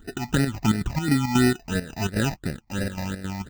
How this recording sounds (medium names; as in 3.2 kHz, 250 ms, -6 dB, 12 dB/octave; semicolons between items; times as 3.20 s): aliases and images of a low sample rate 1.1 kHz, jitter 0%; chopped level 3.7 Hz, depth 65%, duty 65%; phasing stages 8, 2.9 Hz, lowest notch 420–1000 Hz